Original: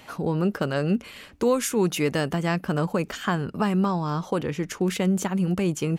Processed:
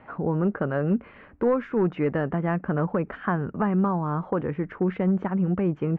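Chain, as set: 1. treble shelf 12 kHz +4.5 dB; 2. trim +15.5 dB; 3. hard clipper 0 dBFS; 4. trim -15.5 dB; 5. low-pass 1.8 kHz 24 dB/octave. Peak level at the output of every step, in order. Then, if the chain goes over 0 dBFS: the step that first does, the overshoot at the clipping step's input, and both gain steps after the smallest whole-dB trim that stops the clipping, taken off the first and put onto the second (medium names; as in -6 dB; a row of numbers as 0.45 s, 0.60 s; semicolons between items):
-11.0 dBFS, +4.5 dBFS, 0.0 dBFS, -15.5 dBFS, -14.5 dBFS; step 2, 4.5 dB; step 2 +10.5 dB, step 4 -10.5 dB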